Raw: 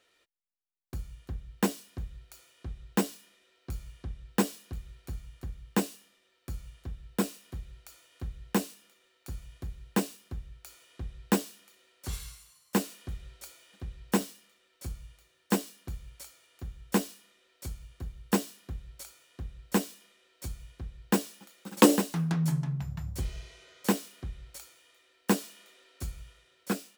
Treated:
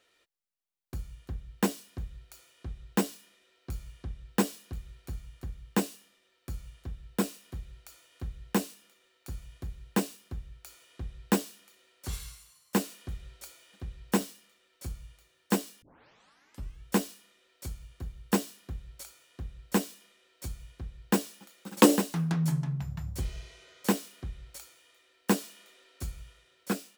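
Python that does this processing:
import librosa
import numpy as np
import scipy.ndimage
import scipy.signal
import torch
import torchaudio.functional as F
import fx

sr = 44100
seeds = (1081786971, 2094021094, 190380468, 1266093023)

y = fx.edit(x, sr, fx.tape_start(start_s=15.82, length_s=1.03), tone=tone)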